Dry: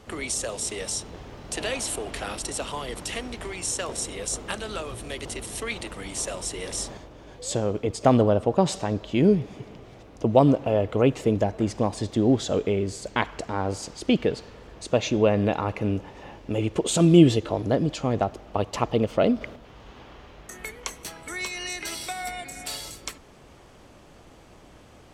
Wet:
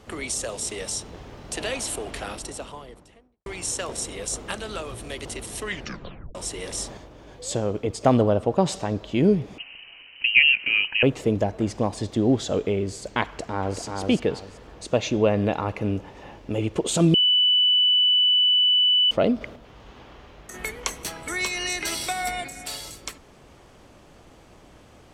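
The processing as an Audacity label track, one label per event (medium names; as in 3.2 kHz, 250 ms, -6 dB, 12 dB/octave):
2.070000	3.460000	studio fade out
5.610000	5.610000	tape stop 0.74 s
9.580000	11.030000	frequency inversion carrier 3 kHz
13.240000	13.810000	echo throw 380 ms, feedback 25%, level -4 dB
17.140000	19.110000	bleep 2.98 kHz -15.5 dBFS
20.540000	22.480000	gain +5 dB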